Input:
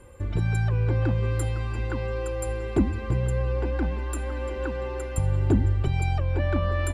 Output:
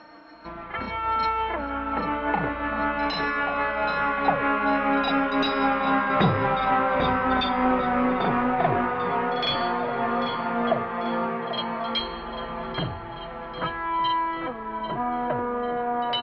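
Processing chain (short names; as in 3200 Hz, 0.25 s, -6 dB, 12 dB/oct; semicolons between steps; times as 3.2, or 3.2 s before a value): gliding pitch shift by +4.5 st ending unshifted; Doppler pass-by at 3, 17 m/s, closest 16 m; low shelf 130 Hz -4.5 dB; reverse echo 47 ms -22.5 dB; speed mistake 78 rpm record played at 33 rpm; in parallel at -5.5 dB: hard clip -28 dBFS, distortion -9 dB; on the sum: tilt +4 dB/oct; overdrive pedal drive 22 dB, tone 1700 Hz, clips at -13.5 dBFS; LPF 3300 Hz 24 dB/oct; on a send: feedback echo 0.793 s, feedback 44%, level -12.5 dB; on the sum: gain +7.5 dB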